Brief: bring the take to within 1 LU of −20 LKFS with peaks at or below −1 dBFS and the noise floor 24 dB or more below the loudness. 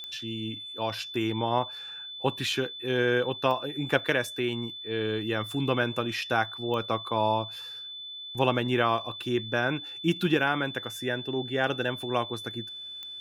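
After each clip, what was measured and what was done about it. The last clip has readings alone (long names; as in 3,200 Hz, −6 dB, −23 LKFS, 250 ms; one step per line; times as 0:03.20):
number of clicks 4; interfering tone 3,500 Hz; level of the tone −38 dBFS; integrated loudness −29.0 LKFS; sample peak −7.5 dBFS; target loudness −20.0 LKFS
→ click removal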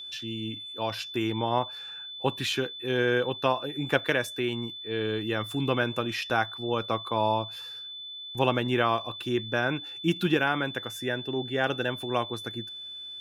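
number of clicks 0; interfering tone 3,500 Hz; level of the tone −38 dBFS
→ notch filter 3,500 Hz, Q 30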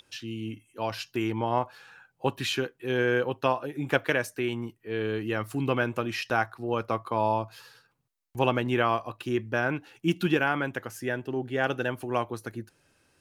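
interfering tone none found; integrated loudness −29.0 LKFS; sample peak −7.5 dBFS; target loudness −20.0 LKFS
→ level +9 dB
brickwall limiter −1 dBFS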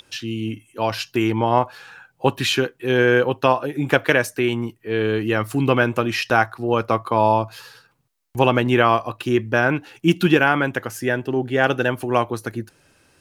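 integrated loudness −20.5 LKFS; sample peak −1.0 dBFS; background noise floor −62 dBFS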